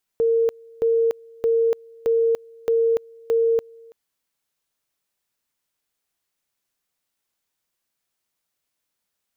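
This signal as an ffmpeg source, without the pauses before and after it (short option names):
-f lavfi -i "aevalsrc='pow(10,(-15.5-27*gte(mod(t,0.62),0.29))/20)*sin(2*PI*458*t)':d=3.72:s=44100"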